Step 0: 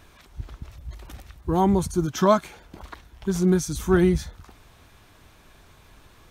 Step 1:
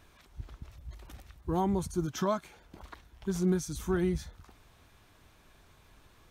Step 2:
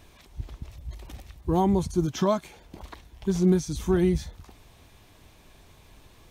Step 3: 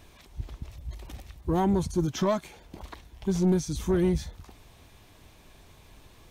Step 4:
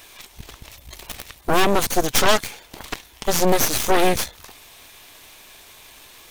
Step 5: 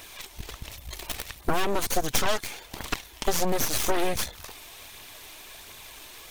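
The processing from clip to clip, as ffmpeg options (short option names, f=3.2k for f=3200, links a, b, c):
-af "alimiter=limit=-11dB:level=0:latency=1:release=433,volume=-7.5dB"
-filter_complex "[0:a]acrossover=split=6000[a][b];[b]acompressor=threshold=-53dB:ratio=4:attack=1:release=60[c];[a][c]amix=inputs=2:normalize=0,equalizer=f=1.4k:w=2.2:g=-7.5,volume=7dB"
-af "asoftclip=type=tanh:threshold=-16.5dB"
-af "crystalizer=i=8.5:c=0,bass=f=250:g=-11,treble=f=4k:g=-9,aeval=exprs='0.266*(cos(1*acos(clip(val(0)/0.266,-1,1)))-cos(1*PI/2))+0.106*(cos(8*acos(clip(val(0)/0.266,-1,1)))-cos(8*PI/2))':c=same,volume=4dB"
-af "acompressor=threshold=-20dB:ratio=10,aphaser=in_gain=1:out_gain=1:delay=3.4:decay=0.33:speed=1.4:type=triangular"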